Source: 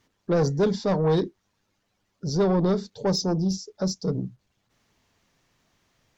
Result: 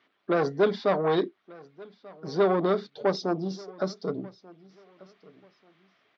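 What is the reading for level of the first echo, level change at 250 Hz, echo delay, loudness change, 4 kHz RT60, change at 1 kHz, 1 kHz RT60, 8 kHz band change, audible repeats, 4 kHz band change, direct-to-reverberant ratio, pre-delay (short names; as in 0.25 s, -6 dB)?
-22.5 dB, -5.0 dB, 1.188 s, -2.0 dB, none, +2.5 dB, none, n/a, 2, -5.5 dB, none, none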